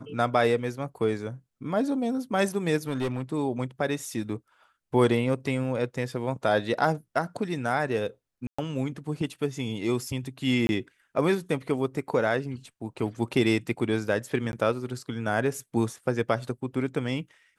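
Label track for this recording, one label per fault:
2.880000	3.220000	clipped -24 dBFS
8.470000	8.590000	gap 0.115 s
10.670000	10.690000	gap 21 ms
14.520000	14.530000	gap 11 ms

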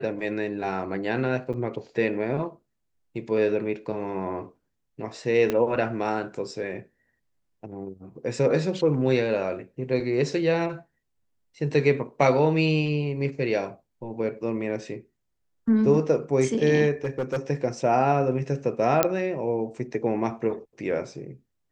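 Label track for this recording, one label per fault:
1.530000	1.540000	gap 7.3 ms
5.500000	5.500000	pop -12 dBFS
17.040000	17.380000	clipped -22.5 dBFS
19.030000	19.030000	pop -3 dBFS

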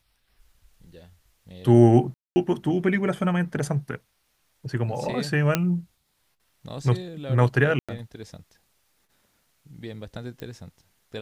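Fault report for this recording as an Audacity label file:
2.140000	2.360000	gap 0.22 s
5.550000	5.550000	pop -6 dBFS
7.790000	7.890000	gap 96 ms
10.400000	10.400000	pop -22 dBFS

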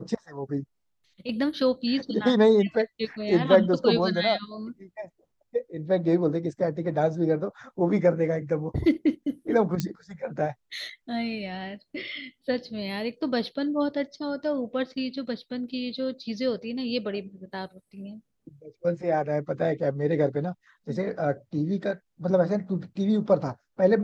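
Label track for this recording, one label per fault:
9.800000	9.800000	pop -13 dBFS

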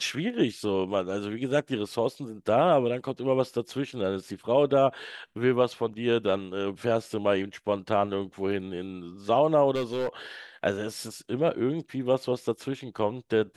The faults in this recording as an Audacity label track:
9.750000	10.090000	clipped -24.5 dBFS

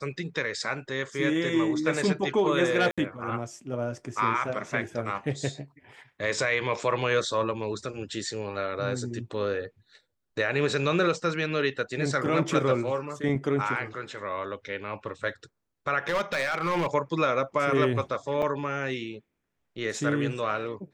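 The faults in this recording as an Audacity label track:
2.910000	2.980000	gap 66 ms
16.080000	16.870000	clipped -22.5 dBFS
18.420000	18.430000	gap 5.8 ms

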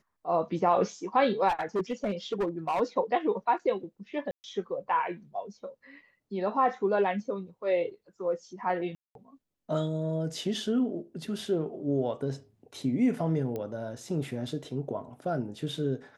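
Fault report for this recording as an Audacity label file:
1.480000	2.810000	clipped -24.5 dBFS
4.310000	4.440000	gap 0.129 s
8.950000	9.150000	gap 0.202 s
13.560000	13.560000	pop -23 dBFS

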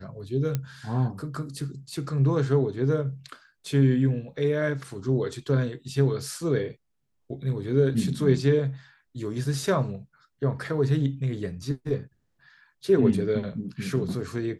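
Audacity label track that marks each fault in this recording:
0.550000	0.550000	pop -14 dBFS

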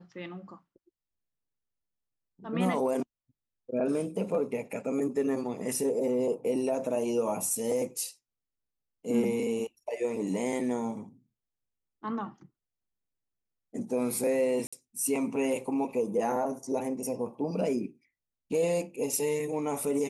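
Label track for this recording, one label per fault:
14.670000	14.720000	gap 55 ms

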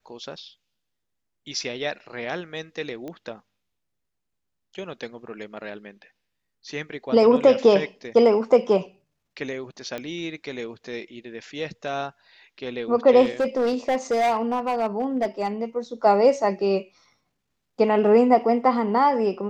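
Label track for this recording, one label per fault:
3.080000	3.080000	pop -23 dBFS
9.980000	9.980000	pop -18 dBFS
13.230000	15.640000	clipped -18 dBFS

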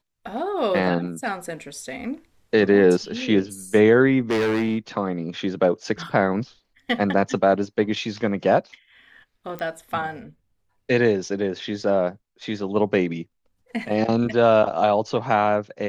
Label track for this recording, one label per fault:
4.300000	4.770000	clipped -18 dBFS
9.590000	9.590000	pop -19 dBFS

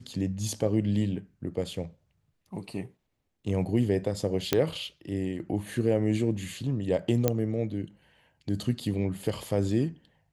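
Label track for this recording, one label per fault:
4.530000	4.530000	pop -8 dBFS
7.280000	7.280000	pop -9 dBFS

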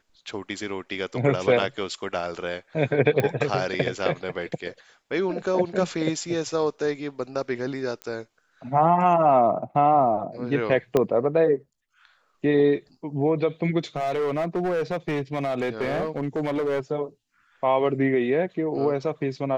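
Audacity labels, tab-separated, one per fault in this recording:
3.200000	3.200000	pop -11 dBFS
8.020000	8.020000	pop -20 dBFS
10.970000	10.970000	pop -9 dBFS
13.960000	16.800000	clipped -21.5 dBFS

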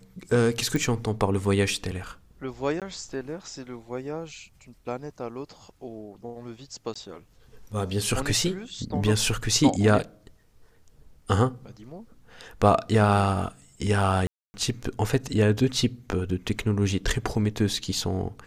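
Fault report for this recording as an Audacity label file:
0.760000	0.760000	pop
2.800000	2.820000	gap 17 ms
6.940000	6.960000	gap 15 ms
14.270000	14.540000	gap 0.27 s

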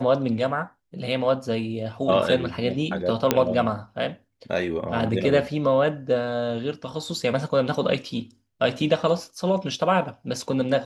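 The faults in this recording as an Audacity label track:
3.310000	3.310000	pop -3 dBFS

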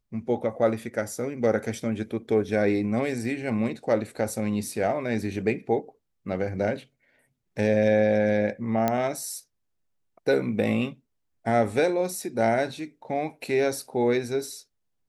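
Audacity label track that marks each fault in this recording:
8.880000	8.880000	pop -10 dBFS

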